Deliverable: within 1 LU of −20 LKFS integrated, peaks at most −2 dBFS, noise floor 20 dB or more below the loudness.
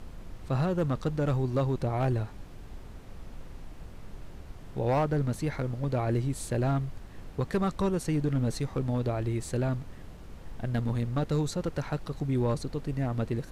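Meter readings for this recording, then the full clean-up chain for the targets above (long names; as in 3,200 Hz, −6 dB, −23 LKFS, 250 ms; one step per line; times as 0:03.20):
share of clipped samples 0.8%; peaks flattened at −20.5 dBFS; background noise floor −46 dBFS; target noise floor −51 dBFS; integrated loudness −30.5 LKFS; sample peak −20.5 dBFS; target loudness −20.0 LKFS
→ clipped peaks rebuilt −20.5 dBFS
noise reduction from a noise print 6 dB
level +10.5 dB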